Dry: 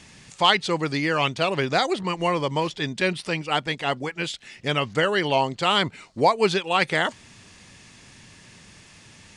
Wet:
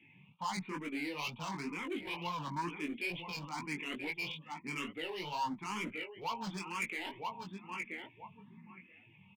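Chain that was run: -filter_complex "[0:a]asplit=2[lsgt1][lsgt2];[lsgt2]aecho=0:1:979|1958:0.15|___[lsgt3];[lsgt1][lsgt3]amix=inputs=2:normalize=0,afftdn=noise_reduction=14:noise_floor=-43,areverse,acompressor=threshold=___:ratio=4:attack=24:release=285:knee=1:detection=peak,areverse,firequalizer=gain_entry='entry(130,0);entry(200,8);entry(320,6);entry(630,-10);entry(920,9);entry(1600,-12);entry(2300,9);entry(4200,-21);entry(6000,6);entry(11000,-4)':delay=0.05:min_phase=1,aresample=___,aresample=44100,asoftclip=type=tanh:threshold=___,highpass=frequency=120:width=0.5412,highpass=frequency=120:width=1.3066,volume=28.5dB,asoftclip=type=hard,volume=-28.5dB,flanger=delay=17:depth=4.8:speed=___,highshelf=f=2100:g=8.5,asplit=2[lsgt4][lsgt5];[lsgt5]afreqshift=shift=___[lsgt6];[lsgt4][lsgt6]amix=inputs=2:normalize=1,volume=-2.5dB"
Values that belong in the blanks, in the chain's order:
0.0299, -32dB, 8000, -22dB, 2.2, 1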